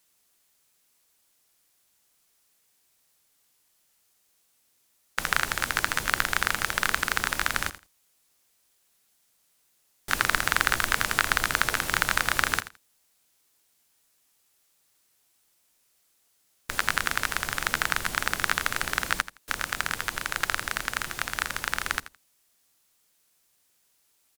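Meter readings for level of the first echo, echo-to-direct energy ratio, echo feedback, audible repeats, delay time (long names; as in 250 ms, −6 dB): −15.0 dB, −15.0 dB, 18%, 2, 83 ms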